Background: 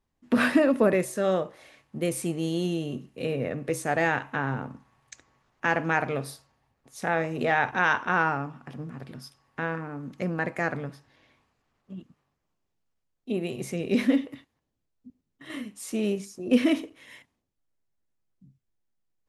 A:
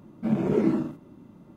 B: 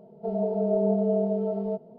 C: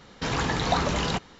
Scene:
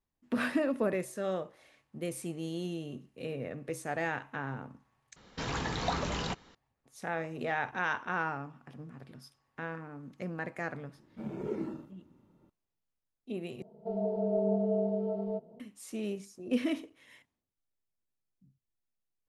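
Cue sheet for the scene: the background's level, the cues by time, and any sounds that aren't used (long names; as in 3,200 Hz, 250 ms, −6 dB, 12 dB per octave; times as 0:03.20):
background −9 dB
0:05.16: overwrite with C −8 dB
0:10.94: mix in A −13 dB + comb filter 2.2 ms, depth 31%
0:13.62: overwrite with B −5.5 dB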